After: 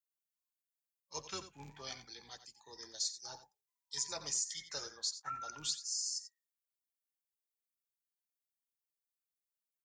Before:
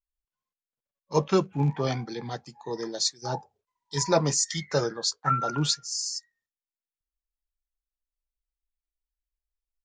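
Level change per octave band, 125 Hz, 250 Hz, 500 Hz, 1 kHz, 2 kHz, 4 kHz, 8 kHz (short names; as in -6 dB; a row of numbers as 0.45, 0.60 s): -30.0, -28.0, -24.5, -17.5, -14.0, -9.5, -7.5 dB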